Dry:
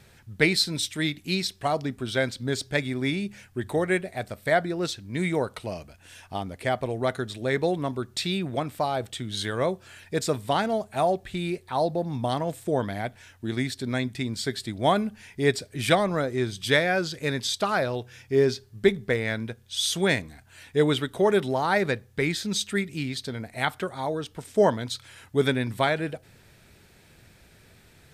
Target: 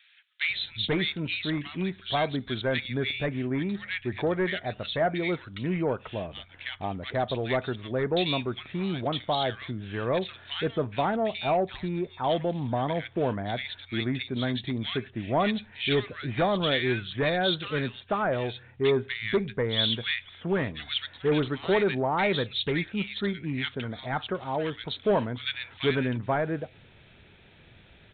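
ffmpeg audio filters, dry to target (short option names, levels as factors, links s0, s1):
-filter_complex "[0:a]highshelf=f=2400:g=8.5,aresample=8000,asoftclip=type=tanh:threshold=0.133,aresample=44100,acrossover=split=1700[s0][s1];[s0]adelay=490[s2];[s2][s1]amix=inputs=2:normalize=0"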